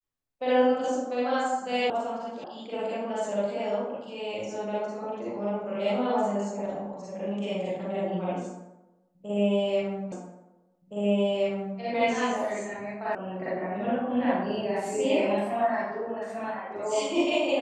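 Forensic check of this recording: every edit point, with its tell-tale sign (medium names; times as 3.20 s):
1.90 s: sound stops dead
2.44 s: sound stops dead
10.12 s: repeat of the last 1.67 s
13.15 s: sound stops dead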